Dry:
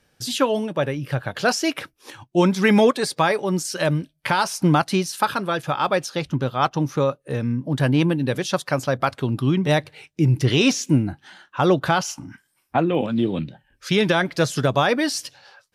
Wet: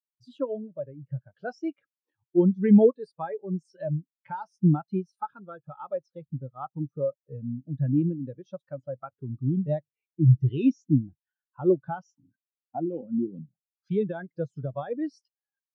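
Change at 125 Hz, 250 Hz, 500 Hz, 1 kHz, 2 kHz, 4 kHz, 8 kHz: -4.0 dB, -4.5 dB, -7.0 dB, -15.5 dB, under -20 dB, under -30 dB, under -35 dB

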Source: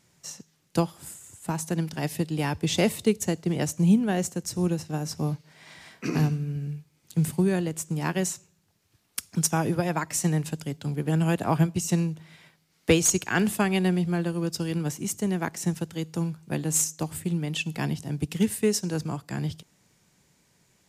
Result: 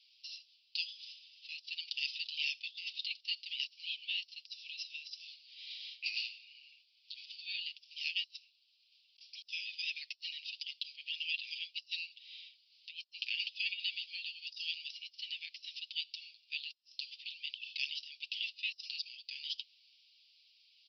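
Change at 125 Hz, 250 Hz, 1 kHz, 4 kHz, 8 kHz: under -40 dB, under -40 dB, under -40 dB, +1.0 dB, -33.0 dB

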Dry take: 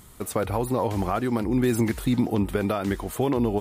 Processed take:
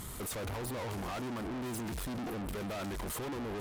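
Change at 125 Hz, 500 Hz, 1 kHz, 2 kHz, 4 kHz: -13.5 dB, -14.0 dB, -11.5 dB, -8.0 dB, -5.0 dB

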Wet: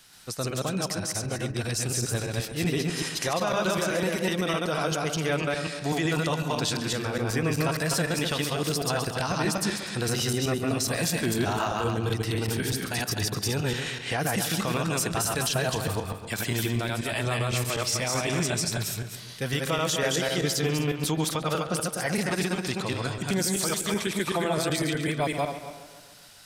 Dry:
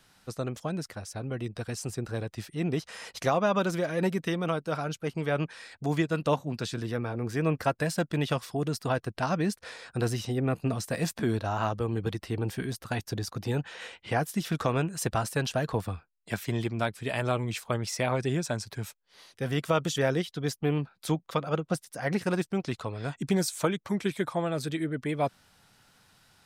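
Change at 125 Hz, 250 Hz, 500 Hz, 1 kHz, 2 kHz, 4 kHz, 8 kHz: +2.0 dB, +1.5 dB, +1.5 dB, +2.0 dB, +5.5 dB, +9.5 dB, +11.0 dB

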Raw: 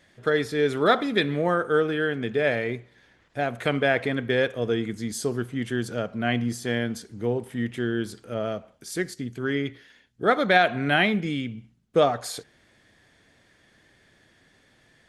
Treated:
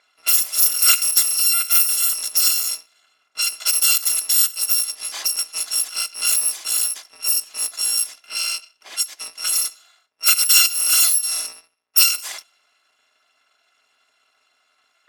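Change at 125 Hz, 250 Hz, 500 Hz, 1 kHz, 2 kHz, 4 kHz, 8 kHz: under -35 dB, under -30 dB, -25.0 dB, -8.5 dB, -1.5 dB, +13.5 dB, +26.0 dB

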